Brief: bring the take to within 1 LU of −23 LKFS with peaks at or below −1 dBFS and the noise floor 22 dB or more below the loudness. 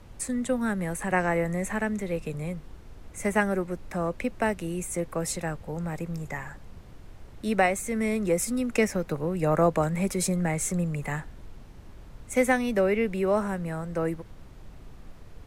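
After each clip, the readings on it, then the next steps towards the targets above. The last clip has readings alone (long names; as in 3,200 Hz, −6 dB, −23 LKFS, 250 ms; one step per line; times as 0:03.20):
background noise floor −47 dBFS; target noise floor −50 dBFS; integrated loudness −28.0 LKFS; sample peak −10.5 dBFS; target loudness −23.0 LKFS
→ noise reduction from a noise print 6 dB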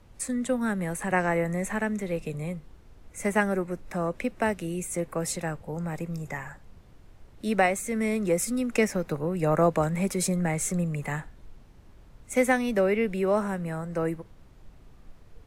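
background noise floor −53 dBFS; integrated loudness −28.0 LKFS; sample peak −10.5 dBFS; target loudness −23.0 LKFS
→ level +5 dB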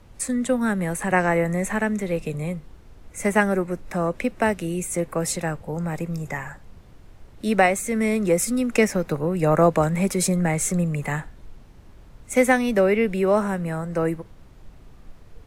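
integrated loudness −23.0 LKFS; sample peak −5.5 dBFS; background noise floor −48 dBFS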